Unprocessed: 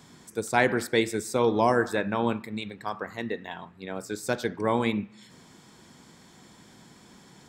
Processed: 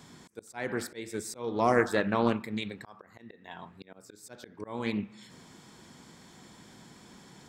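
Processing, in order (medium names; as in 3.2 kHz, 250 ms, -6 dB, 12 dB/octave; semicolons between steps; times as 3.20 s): slow attack 444 ms; loudspeaker Doppler distortion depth 0.23 ms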